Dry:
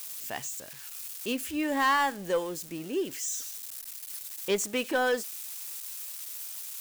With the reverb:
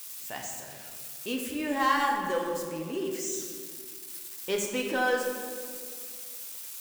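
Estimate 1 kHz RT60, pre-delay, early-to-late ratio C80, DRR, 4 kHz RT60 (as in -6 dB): 1.9 s, 5 ms, 4.5 dB, 0.0 dB, 1.1 s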